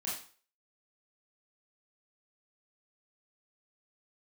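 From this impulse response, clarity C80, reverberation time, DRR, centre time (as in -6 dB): 8.5 dB, 0.40 s, -7.0 dB, 44 ms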